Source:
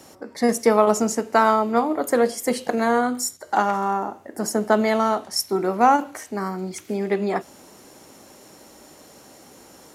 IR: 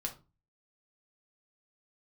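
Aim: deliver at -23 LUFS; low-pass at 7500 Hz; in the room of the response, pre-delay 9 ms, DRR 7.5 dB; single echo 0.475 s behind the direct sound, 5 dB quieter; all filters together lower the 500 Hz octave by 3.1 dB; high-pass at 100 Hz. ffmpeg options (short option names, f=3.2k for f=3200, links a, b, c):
-filter_complex "[0:a]highpass=100,lowpass=7.5k,equalizer=f=500:t=o:g=-4,aecho=1:1:475:0.562,asplit=2[a][b];[1:a]atrim=start_sample=2205,adelay=9[c];[b][c]afir=irnorm=-1:irlink=0,volume=-8dB[d];[a][d]amix=inputs=2:normalize=0,volume=-2dB"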